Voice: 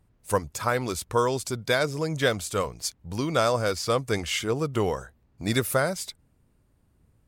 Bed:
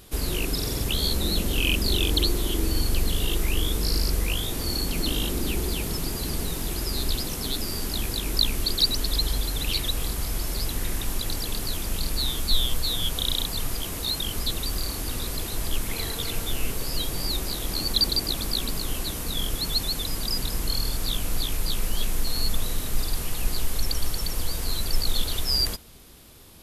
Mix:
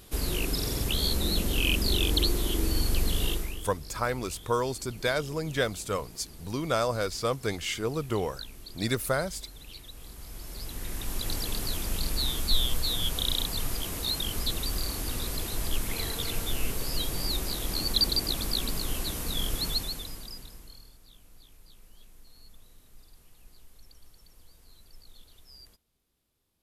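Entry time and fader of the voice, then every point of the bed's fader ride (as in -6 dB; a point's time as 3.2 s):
3.35 s, -4.0 dB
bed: 3.29 s -2.5 dB
3.71 s -19.5 dB
9.89 s -19.5 dB
11.32 s -2.5 dB
19.67 s -2.5 dB
21 s -28.5 dB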